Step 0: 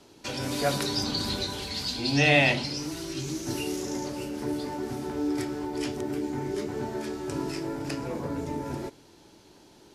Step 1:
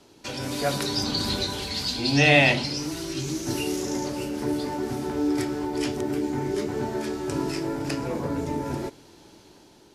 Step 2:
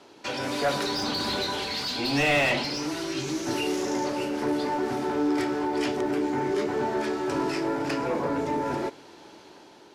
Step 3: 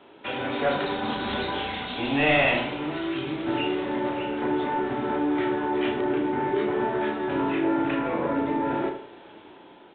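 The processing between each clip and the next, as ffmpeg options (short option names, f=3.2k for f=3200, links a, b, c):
-af "dynaudnorm=f=670:g=3:m=4dB"
-filter_complex "[0:a]asplit=2[a][b];[b]highpass=f=720:p=1,volume=24dB,asoftclip=type=tanh:threshold=-4dB[c];[a][c]amix=inputs=2:normalize=0,lowpass=f=1.8k:p=1,volume=-6dB,volume=-9dB"
-filter_complex "[0:a]asplit=2[a][b];[b]adelay=33,volume=-5dB[c];[a][c]amix=inputs=2:normalize=0,aresample=8000,aresample=44100,asplit=2[d][e];[e]adelay=79,lowpass=f=2k:p=1,volume=-8dB,asplit=2[f][g];[g]adelay=79,lowpass=f=2k:p=1,volume=0.36,asplit=2[h][i];[i]adelay=79,lowpass=f=2k:p=1,volume=0.36,asplit=2[j][k];[k]adelay=79,lowpass=f=2k:p=1,volume=0.36[l];[d][f][h][j][l]amix=inputs=5:normalize=0"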